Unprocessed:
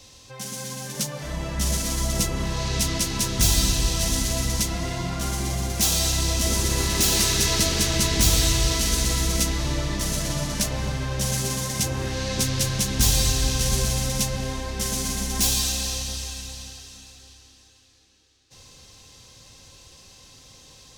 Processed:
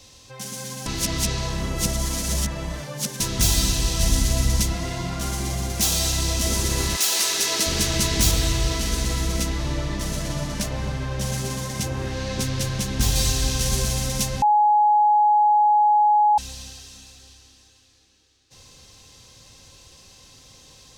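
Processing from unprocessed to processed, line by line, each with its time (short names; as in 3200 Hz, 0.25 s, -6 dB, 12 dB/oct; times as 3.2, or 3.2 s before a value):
0.86–3.2 reverse
3.99–4.73 low shelf 120 Hz +8 dB
6.95–7.66 HPF 800 Hz -> 270 Hz
8.31–13.16 high shelf 3700 Hz -6.5 dB
14.42–16.38 bleep 839 Hz -13.5 dBFS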